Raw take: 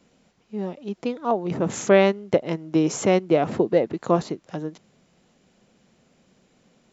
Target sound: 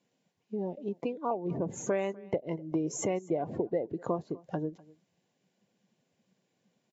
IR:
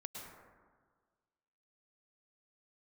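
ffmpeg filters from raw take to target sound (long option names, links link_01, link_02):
-filter_complex "[0:a]acompressor=threshold=-33dB:ratio=4,asettb=1/sr,asplit=3[link_01][link_02][link_03];[link_01]atrim=end=1.514[link_04];[link_02]atrim=start=1.51:end=1.91,asetpts=PTS-STARTPTS,afade=type=in:duration=0.004:curve=qsin,afade=type=out:start_time=0.396:duration=0.004:curve=qsin,highshelf=frequency=2700:gain=-4.5[link_05];[link_03]atrim=start=1.906[link_06];[link_04][link_05]acrossfade=duration=0.004:curve1=hsin:curve2=qsin[link_07];[link_07][link_06]acrossfade=duration=0.004:curve1=qsin:curve2=hsin,afftdn=noise_reduction=18:noise_floor=-41,asuperstop=centerf=1300:order=4:qfactor=7.4,equalizer=frequency=220:width_type=o:width=0.48:gain=-5,aecho=1:1:249:0.0708,volume=3.5dB" -ar 44100 -c:a libvorbis -b:a 48k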